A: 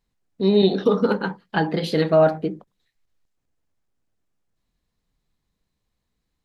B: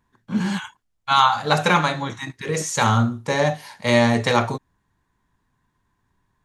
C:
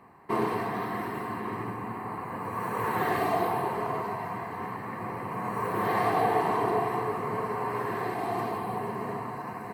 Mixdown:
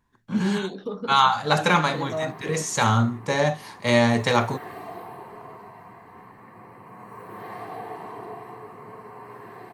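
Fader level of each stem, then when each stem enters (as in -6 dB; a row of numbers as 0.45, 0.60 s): -13.5, -2.0, -11.0 dB; 0.00, 0.00, 1.55 s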